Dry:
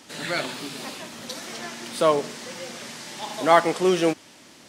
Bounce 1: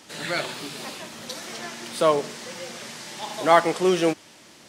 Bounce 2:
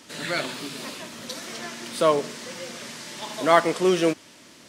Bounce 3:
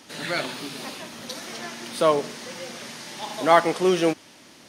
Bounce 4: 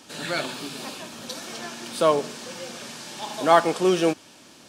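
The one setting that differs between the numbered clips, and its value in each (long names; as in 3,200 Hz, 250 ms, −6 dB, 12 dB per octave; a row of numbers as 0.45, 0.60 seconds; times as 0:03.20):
notch filter, centre frequency: 260, 800, 7,600, 2,000 Hertz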